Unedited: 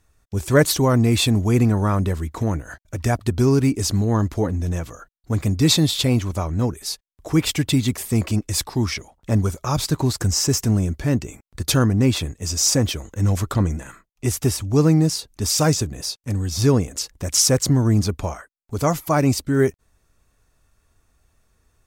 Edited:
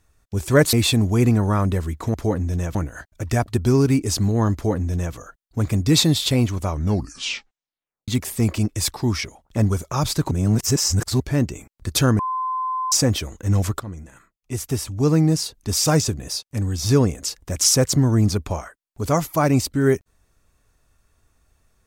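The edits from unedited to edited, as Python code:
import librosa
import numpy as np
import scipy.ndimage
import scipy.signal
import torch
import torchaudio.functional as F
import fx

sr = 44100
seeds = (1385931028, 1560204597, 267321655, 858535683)

y = fx.edit(x, sr, fx.cut(start_s=0.73, length_s=0.34),
    fx.duplicate(start_s=4.27, length_s=0.61, to_s=2.48),
    fx.tape_stop(start_s=6.44, length_s=1.37),
    fx.reverse_span(start_s=10.04, length_s=0.89),
    fx.bleep(start_s=11.92, length_s=0.73, hz=1030.0, db=-21.5),
    fx.fade_in_from(start_s=13.53, length_s=1.66, floor_db=-16.5), tone=tone)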